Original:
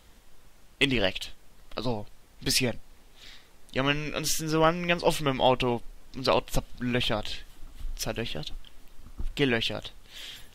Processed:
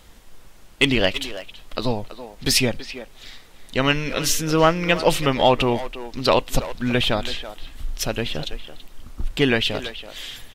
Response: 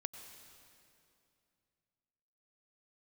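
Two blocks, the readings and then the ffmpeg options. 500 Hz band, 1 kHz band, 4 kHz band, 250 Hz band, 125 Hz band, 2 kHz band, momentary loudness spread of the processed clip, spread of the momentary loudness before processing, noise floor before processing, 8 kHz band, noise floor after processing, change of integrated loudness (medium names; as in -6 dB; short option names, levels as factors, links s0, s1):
+6.5 dB, +6.5 dB, +6.5 dB, +7.0 dB, +6.5 dB, +6.5 dB, 17 LU, 17 LU, -55 dBFS, +7.0 dB, -47 dBFS, +6.5 dB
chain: -filter_complex "[0:a]acontrast=79,asplit=2[s0][s1];[s1]adelay=330,highpass=300,lowpass=3400,asoftclip=type=hard:threshold=0.178,volume=0.282[s2];[s0][s2]amix=inputs=2:normalize=0"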